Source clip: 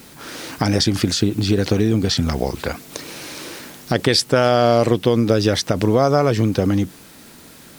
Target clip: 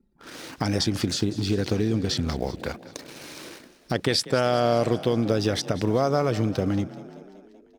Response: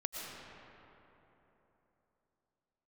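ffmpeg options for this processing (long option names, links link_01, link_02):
-filter_complex "[0:a]anlmdn=10,asplit=7[link_01][link_02][link_03][link_04][link_05][link_06][link_07];[link_02]adelay=192,afreqshift=30,volume=-17dB[link_08];[link_03]adelay=384,afreqshift=60,volume=-20.9dB[link_09];[link_04]adelay=576,afreqshift=90,volume=-24.8dB[link_10];[link_05]adelay=768,afreqshift=120,volume=-28.6dB[link_11];[link_06]adelay=960,afreqshift=150,volume=-32.5dB[link_12];[link_07]adelay=1152,afreqshift=180,volume=-36.4dB[link_13];[link_01][link_08][link_09][link_10][link_11][link_12][link_13]amix=inputs=7:normalize=0,volume=-7dB"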